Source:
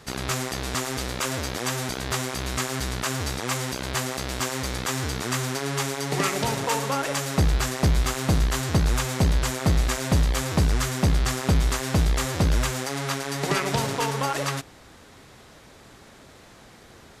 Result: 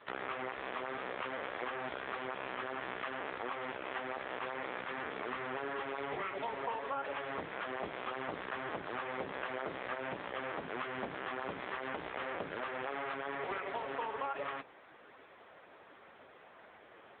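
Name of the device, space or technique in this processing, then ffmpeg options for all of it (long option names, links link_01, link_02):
voicemail: -af "highpass=420,lowpass=2600,acompressor=threshold=-31dB:ratio=12,volume=-1dB" -ar 8000 -c:a libopencore_amrnb -b:a 6700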